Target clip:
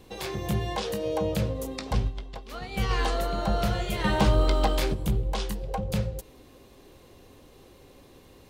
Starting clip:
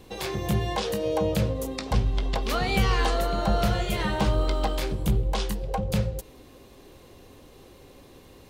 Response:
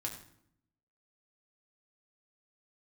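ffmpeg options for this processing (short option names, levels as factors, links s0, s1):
-filter_complex "[0:a]asplit=3[s0][s1][s2];[s0]afade=t=out:st=2.07:d=0.02[s3];[s1]agate=range=0.0224:threshold=0.141:ratio=3:detection=peak,afade=t=in:st=2.07:d=0.02,afade=t=out:st=2.89:d=0.02[s4];[s2]afade=t=in:st=2.89:d=0.02[s5];[s3][s4][s5]amix=inputs=3:normalize=0,asettb=1/sr,asplit=3[s6][s7][s8];[s6]atrim=end=4.044[s9];[s7]atrim=start=4.04:end=4.94,asetpts=PTS-STARTPTS,afade=t=in:d=0.004:c=qsin,afade=t=out:st=0.896:d=0.004:c=qsin,acontrast=25[s10];[s8]atrim=start=4.936[s11];[s9][s10]acrossfade=d=0.004:c1=hsin:c2=qsin[s12];[s12][s11]acrossfade=d=0.004:c1=qsin:c2=hsin,volume=0.75"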